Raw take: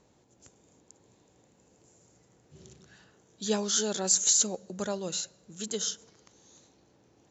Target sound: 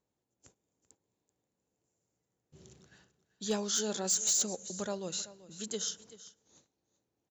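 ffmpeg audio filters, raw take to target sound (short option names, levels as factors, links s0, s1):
-af "agate=range=0.141:threshold=0.00141:ratio=16:detection=peak,aecho=1:1:385:0.141,volume=9.44,asoftclip=hard,volume=0.106,volume=0.631"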